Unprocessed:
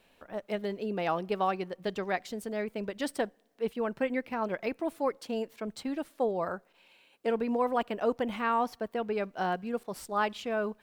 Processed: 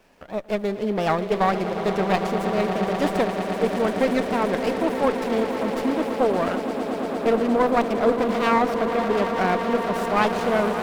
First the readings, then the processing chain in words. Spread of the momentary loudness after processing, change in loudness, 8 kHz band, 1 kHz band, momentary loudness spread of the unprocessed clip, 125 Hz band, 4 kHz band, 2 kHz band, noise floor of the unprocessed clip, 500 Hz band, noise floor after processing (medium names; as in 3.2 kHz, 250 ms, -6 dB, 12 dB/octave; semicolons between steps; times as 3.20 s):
5 LU, +10.0 dB, +8.0 dB, +9.5 dB, 7 LU, +13.5 dB, +10.0 dB, +9.5 dB, -66 dBFS, +10.0 dB, -32 dBFS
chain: echo with a slow build-up 115 ms, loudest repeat 8, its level -12.5 dB; sliding maximum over 9 samples; trim +8.5 dB